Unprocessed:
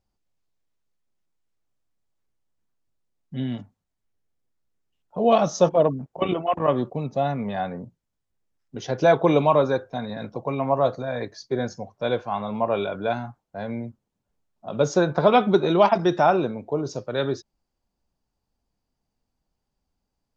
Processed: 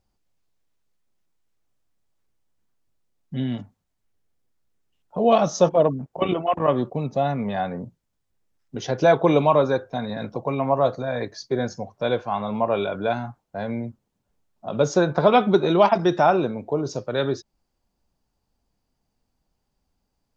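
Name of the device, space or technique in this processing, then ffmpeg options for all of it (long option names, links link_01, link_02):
parallel compression: -filter_complex "[0:a]asplit=2[link_01][link_02];[link_02]acompressor=threshold=-33dB:ratio=6,volume=-4dB[link_03];[link_01][link_03]amix=inputs=2:normalize=0"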